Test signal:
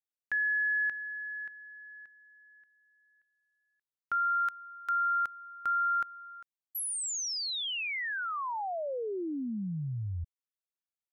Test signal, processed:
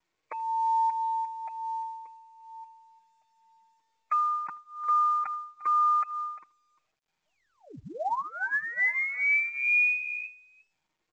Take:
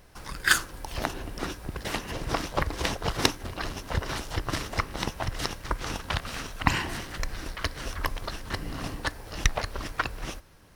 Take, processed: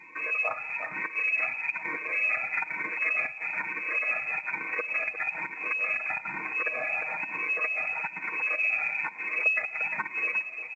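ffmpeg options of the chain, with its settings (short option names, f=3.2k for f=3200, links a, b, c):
-filter_complex "[0:a]afftfilt=real='re*pow(10,22/40*sin(2*PI*(1.8*log(max(b,1)*sr/1024/100)/log(2)-(-1.1)*(pts-256)/sr)))':imag='im*pow(10,22/40*sin(2*PI*(1.8*log(max(b,1)*sr/1024/100)/log(2)-(-1.1)*(pts-256)/sr)))':win_size=1024:overlap=0.75,asplit=2[a][b];[b]aecho=0:1:350:0.119[c];[a][c]amix=inputs=2:normalize=0,acompressor=threshold=-32dB:ratio=4:attack=0.7:release=118:knee=1:detection=rms,asplit=2[d][e];[e]adelay=80,highpass=300,lowpass=3.4k,asoftclip=type=hard:threshold=-29dB,volume=-23dB[f];[d][f]amix=inputs=2:normalize=0,acrossover=split=1400[g][h];[g]adynamicsmooth=sensitivity=6.5:basefreq=640[i];[i][h]amix=inputs=2:normalize=0,asoftclip=type=hard:threshold=-26dB,aecho=1:1:6.6:0.72,lowpass=f=2.2k:t=q:w=0.5098,lowpass=f=2.2k:t=q:w=0.6013,lowpass=f=2.2k:t=q:w=0.9,lowpass=f=2.2k:t=q:w=2.563,afreqshift=-2600,highpass=130,bandreject=f=1.6k:w=13,volume=6.5dB" -ar 16000 -c:a pcm_mulaw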